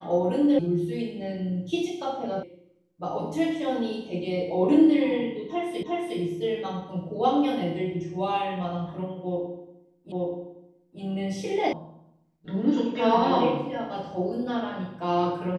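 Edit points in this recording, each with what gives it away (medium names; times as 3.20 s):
0.59 s: sound stops dead
2.43 s: sound stops dead
5.83 s: repeat of the last 0.36 s
10.12 s: repeat of the last 0.88 s
11.73 s: sound stops dead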